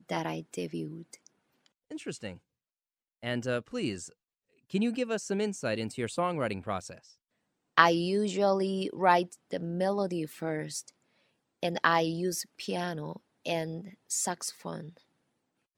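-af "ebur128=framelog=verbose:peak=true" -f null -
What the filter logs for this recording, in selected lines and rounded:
Integrated loudness:
  I:         -31.1 LUFS
  Threshold: -41.9 LUFS
Loudness range:
  LRA:        10.2 LU
  Threshold: -51.9 LUFS
  LRA low:   -38.4 LUFS
  LRA high:  -28.2 LUFS
True peak:
  Peak:       -3.1 dBFS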